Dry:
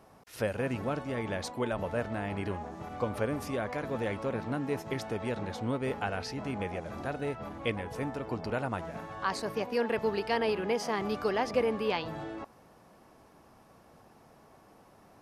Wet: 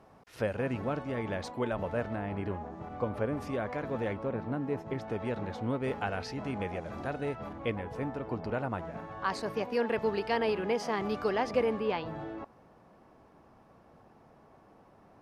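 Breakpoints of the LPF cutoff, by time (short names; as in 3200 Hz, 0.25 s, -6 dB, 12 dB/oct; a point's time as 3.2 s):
LPF 6 dB/oct
3000 Hz
from 2.16 s 1400 Hz
from 3.37 s 2500 Hz
from 4.13 s 1100 Hz
from 5.08 s 2400 Hz
from 5.84 s 4700 Hz
from 7.53 s 1900 Hz
from 9.25 s 4700 Hz
from 11.79 s 1800 Hz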